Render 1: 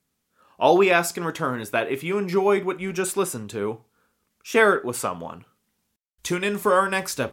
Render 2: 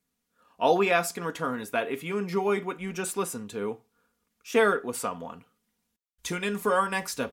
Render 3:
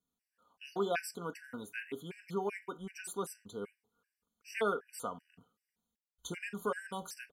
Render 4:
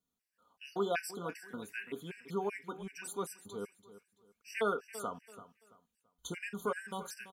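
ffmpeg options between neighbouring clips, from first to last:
ffmpeg -i in.wav -af "aecho=1:1:4.2:0.46,volume=-5.5dB" out.wav
ffmpeg -i in.wav -af "afftfilt=real='re*gt(sin(2*PI*2.6*pts/sr)*(1-2*mod(floor(b*sr/1024/1500),2)),0)':imag='im*gt(sin(2*PI*2.6*pts/sr)*(1-2*mod(floor(b*sr/1024/1500),2)),0)':win_size=1024:overlap=0.75,volume=-8dB" out.wav
ffmpeg -i in.wav -af "aecho=1:1:335|670|1005:0.178|0.0498|0.0139" out.wav

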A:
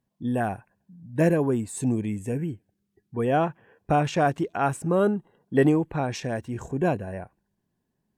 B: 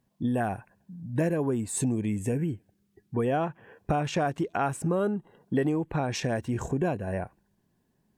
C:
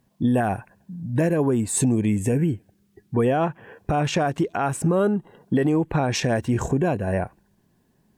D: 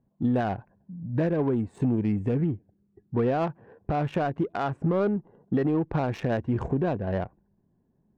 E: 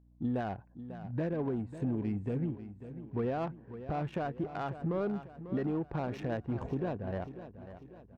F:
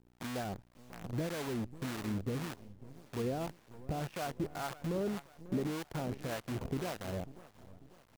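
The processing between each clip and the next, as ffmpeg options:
ffmpeg -i in.wav -af "acompressor=threshold=-31dB:ratio=4,volume=5.5dB" out.wav
ffmpeg -i in.wav -af "alimiter=limit=-20dB:level=0:latency=1:release=86,volume=7.5dB" out.wav
ffmpeg -i in.wav -af "adynamicsmooth=sensitivity=1:basefreq=900,volume=-4dB" out.wav
ffmpeg -i in.wav -af "aeval=exprs='val(0)+0.00251*(sin(2*PI*60*n/s)+sin(2*PI*2*60*n/s)/2+sin(2*PI*3*60*n/s)/3+sin(2*PI*4*60*n/s)/4+sin(2*PI*5*60*n/s)/5)':channel_layout=same,aecho=1:1:545|1090|1635|2180|2725:0.237|0.114|0.0546|0.0262|0.0126,volume=-8.5dB" out.wav
ffmpeg -i in.wav -filter_complex "[0:a]acrusher=bits=7:dc=4:mix=0:aa=0.000001,acrossover=split=600[link_01][link_02];[link_01]aeval=exprs='val(0)*(1-0.7/2+0.7/2*cos(2*PI*1.8*n/s))':channel_layout=same[link_03];[link_02]aeval=exprs='val(0)*(1-0.7/2-0.7/2*cos(2*PI*1.8*n/s))':channel_layout=same[link_04];[link_03][link_04]amix=inputs=2:normalize=0" out.wav

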